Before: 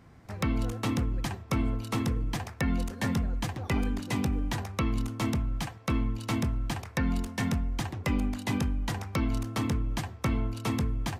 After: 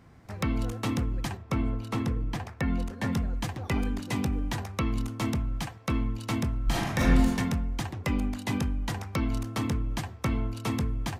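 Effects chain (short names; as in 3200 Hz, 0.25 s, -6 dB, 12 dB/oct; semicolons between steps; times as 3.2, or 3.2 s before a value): 1.37–3.13 high shelf 4100 Hz -8 dB; 6.64–7.35 reverb throw, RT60 0.98 s, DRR -6.5 dB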